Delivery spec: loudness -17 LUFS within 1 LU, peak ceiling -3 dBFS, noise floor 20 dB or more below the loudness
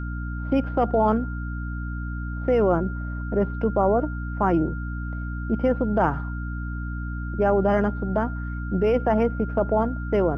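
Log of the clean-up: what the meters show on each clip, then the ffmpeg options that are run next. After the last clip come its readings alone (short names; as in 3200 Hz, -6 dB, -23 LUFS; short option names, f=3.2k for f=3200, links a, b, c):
hum 60 Hz; harmonics up to 300 Hz; hum level -27 dBFS; steady tone 1400 Hz; tone level -38 dBFS; loudness -24.5 LUFS; peak -7.0 dBFS; loudness target -17.0 LUFS
-> -af "bandreject=f=60:t=h:w=6,bandreject=f=120:t=h:w=6,bandreject=f=180:t=h:w=6,bandreject=f=240:t=h:w=6,bandreject=f=300:t=h:w=6"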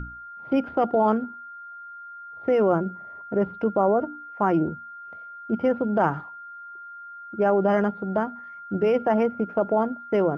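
hum none; steady tone 1400 Hz; tone level -38 dBFS
-> -af "bandreject=f=1.4k:w=30"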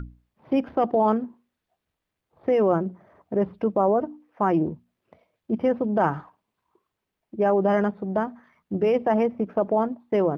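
steady tone none; loudness -24.5 LUFS; peak -8.0 dBFS; loudness target -17.0 LUFS
-> -af "volume=7.5dB,alimiter=limit=-3dB:level=0:latency=1"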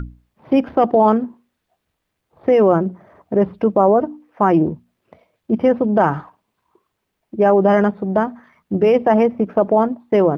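loudness -17.0 LUFS; peak -3.0 dBFS; noise floor -75 dBFS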